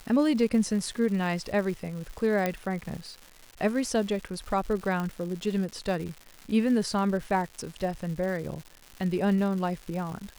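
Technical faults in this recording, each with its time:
surface crackle 310 per second −36 dBFS
0:02.46: click −13 dBFS
0:05.00: click

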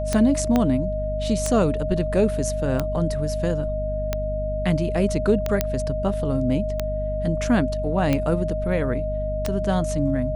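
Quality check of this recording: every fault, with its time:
mains hum 50 Hz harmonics 5 −28 dBFS
scratch tick 45 rpm −9 dBFS
whistle 620 Hz −26 dBFS
0:00.56: click −8 dBFS
0:05.61: click −5 dBFS

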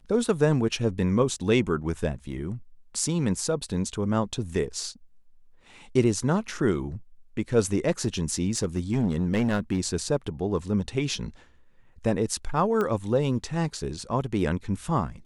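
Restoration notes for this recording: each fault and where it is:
0:08.57–0:09.79: clipping −19 dBFS
0:12.81: click −16 dBFS

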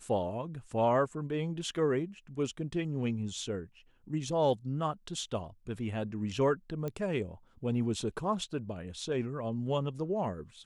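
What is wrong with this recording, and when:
0:06.88: click −24 dBFS

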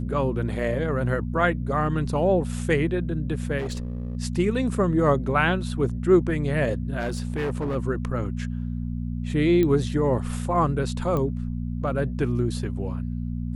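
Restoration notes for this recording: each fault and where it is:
mains hum 60 Hz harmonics 4 −29 dBFS
0:03.58–0:04.17: clipping −25.5 dBFS
0:06.99–0:07.76: clipping −23 dBFS
0:09.63: click −13 dBFS
0:11.17: click −16 dBFS

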